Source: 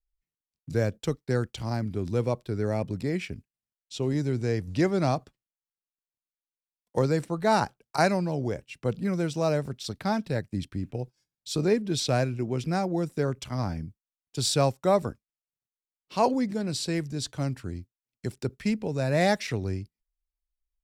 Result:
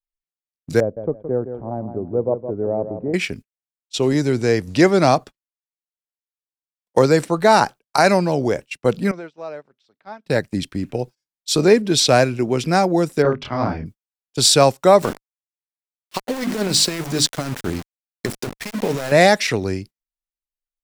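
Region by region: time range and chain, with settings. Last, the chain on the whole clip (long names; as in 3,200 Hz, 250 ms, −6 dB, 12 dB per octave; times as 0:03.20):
0:00.80–0:03.14: transistor ladder low-pass 840 Hz, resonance 30% + repeating echo 166 ms, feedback 24%, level −9.5 dB
0:09.11–0:10.26: high-pass filter 740 Hz 6 dB per octave + downward compressor 3 to 1, threshold −40 dBFS + head-to-tape spacing loss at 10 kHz 30 dB
0:13.22–0:13.86: high-frequency loss of the air 290 metres + mains-hum notches 50/100/150/200/250 Hz + double-tracking delay 27 ms −3 dB
0:15.02–0:19.12: mains-hum notches 50/100/150/200/250/300 Hz + compressor whose output falls as the input rises −31 dBFS, ratio −0.5 + centre clipping without the shift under −38 dBFS
whole clip: noise gate −42 dBFS, range −22 dB; parametric band 77 Hz −11.5 dB 2.7 octaves; boost into a limiter +14.5 dB; level −1 dB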